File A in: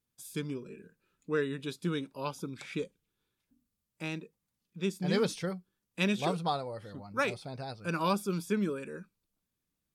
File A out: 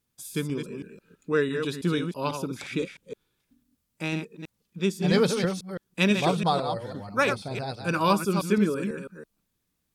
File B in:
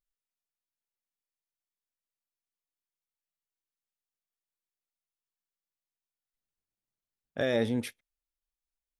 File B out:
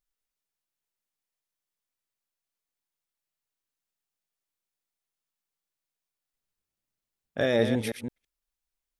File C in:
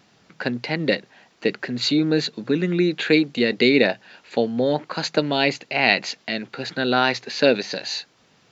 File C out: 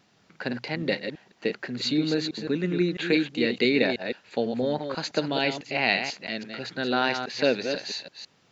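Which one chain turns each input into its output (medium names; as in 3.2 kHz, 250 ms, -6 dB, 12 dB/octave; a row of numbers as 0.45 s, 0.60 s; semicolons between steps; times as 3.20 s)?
chunks repeated in reverse 165 ms, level -7 dB; normalise loudness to -27 LUFS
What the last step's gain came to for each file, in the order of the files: +6.5 dB, +3.5 dB, -6.0 dB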